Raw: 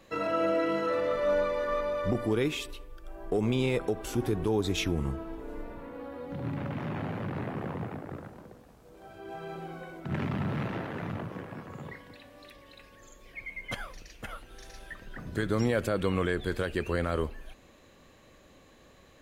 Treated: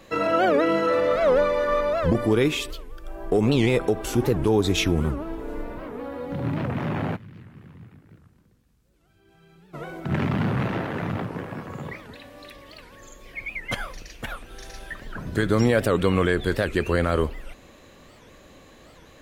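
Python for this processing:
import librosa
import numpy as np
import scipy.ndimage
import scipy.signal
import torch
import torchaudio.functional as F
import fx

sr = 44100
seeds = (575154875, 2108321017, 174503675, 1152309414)

y = fx.tone_stack(x, sr, knobs='6-0-2', at=(7.15, 9.74), fade=0.02)
y = fx.record_warp(y, sr, rpm=78.0, depth_cents=250.0)
y = F.gain(torch.from_numpy(y), 7.5).numpy()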